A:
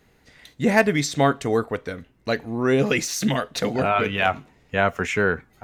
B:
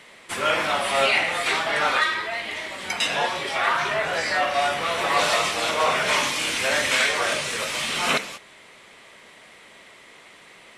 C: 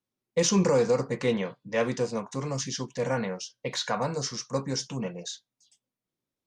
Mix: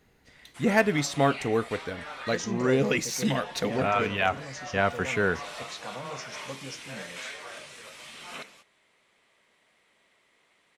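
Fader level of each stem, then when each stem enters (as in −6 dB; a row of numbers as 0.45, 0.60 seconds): −4.5, −18.5, −11.0 decibels; 0.00, 0.25, 1.95 seconds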